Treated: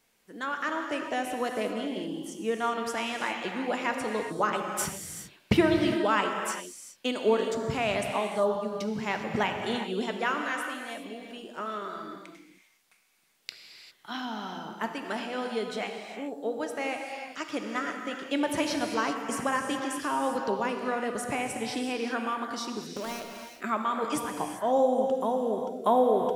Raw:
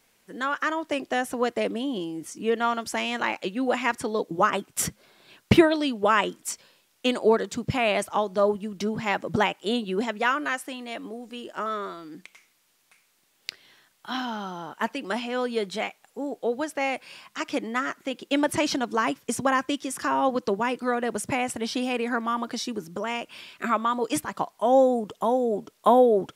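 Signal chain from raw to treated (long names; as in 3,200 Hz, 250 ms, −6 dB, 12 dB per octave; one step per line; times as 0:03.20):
0:22.96–0:23.56: gap after every zero crossing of 0.15 ms
reverb whose tail is shaped and stops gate 430 ms flat, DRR 3 dB
level −5.5 dB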